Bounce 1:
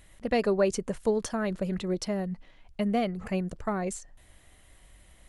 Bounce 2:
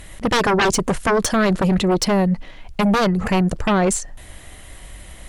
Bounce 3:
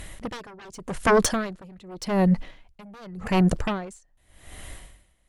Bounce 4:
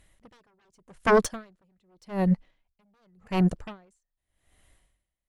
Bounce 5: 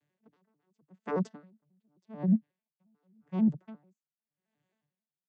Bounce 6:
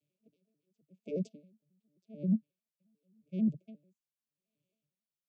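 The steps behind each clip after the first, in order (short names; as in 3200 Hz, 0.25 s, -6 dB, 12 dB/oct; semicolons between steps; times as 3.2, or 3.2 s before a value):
sine folder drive 13 dB, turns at -13 dBFS
dB-linear tremolo 0.86 Hz, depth 29 dB
upward expander 2.5:1, over -30 dBFS
arpeggiated vocoder major triad, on D3, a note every 89 ms; gain -4.5 dB
brick-wall FIR band-stop 680–2200 Hz; gain -4 dB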